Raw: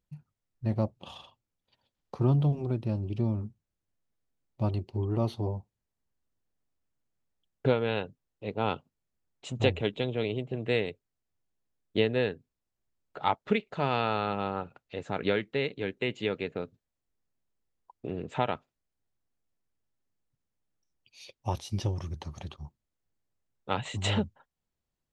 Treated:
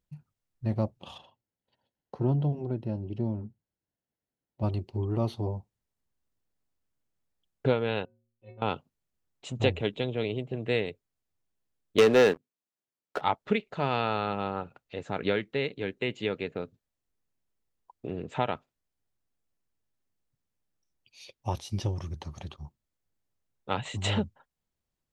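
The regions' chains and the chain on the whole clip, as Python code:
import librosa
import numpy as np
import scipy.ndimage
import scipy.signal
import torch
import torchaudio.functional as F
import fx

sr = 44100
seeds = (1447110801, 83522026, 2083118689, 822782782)

y = fx.chain(x, sr, fx.high_shelf(hz=3000.0, db=-9.5),
    fx.notch_comb(f0_hz=1200.0), at=(1.18, 4.63))
y = fx.chain(y, sr, fx.air_absorb(metres=250.0),
    fx.stiff_resonator(f0_hz=110.0, decay_s=0.69, stiffness=0.03), at=(8.05, 8.62))
y = fx.chain(y, sr, fx.highpass(hz=220.0, slope=12),
    fx.leveller(passes=3), at=(11.98, 13.21))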